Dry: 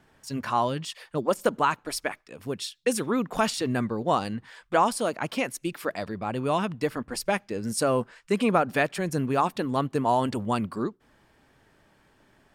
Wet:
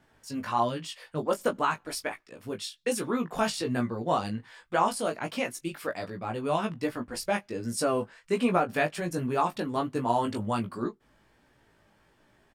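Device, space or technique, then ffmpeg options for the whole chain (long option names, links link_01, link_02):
double-tracked vocal: -filter_complex "[0:a]asplit=2[link_01][link_02];[link_02]adelay=20,volume=-13dB[link_03];[link_01][link_03]amix=inputs=2:normalize=0,flanger=delay=16.5:depth=2.2:speed=1.3"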